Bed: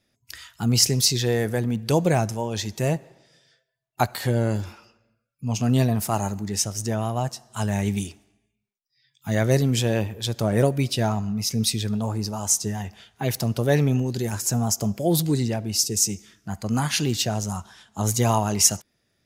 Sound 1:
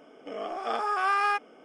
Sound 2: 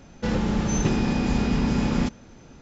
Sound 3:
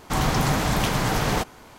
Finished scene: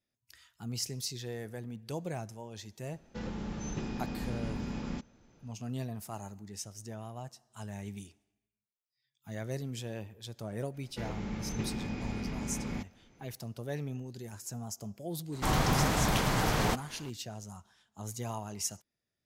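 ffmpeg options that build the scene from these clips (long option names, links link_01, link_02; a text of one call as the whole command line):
ffmpeg -i bed.wav -i cue0.wav -i cue1.wav -i cue2.wav -filter_complex "[2:a]asplit=2[link_01][link_02];[0:a]volume=-17.5dB[link_03];[link_02]equalizer=frequency=2200:width=6.4:gain=9[link_04];[link_01]atrim=end=2.61,asetpts=PTS-STARTPTS,volume=-14.5dB,afade=type=in:duration=0.004:curve=hsin,afade=type=out:start_time=2.606:duration=0.004:curve=hsin,adelay=2920[link_05];[link_04]atrim=end=2.61,asetpts=PTS-STARTPTS,volume=-14.5dB,afade=type=in:duration=0.004:curve=hsin,afade=type=out:start_time=2.606:duration=0.004:curve=hsin,adelay=473634S[link_06];[3:a]atrim=end=1.78,asetpts=PTS-STARTPTS,volume=-5.5dB,afade=type=in:duration=0.004:curve=hsin,afade=type=out:start_time=1.776:duration=0.004:curve=hsin,adelay=15320[link_07];[link_03][link_05][link_06][link_07]amix=inputs=4:normalize=0" out.wav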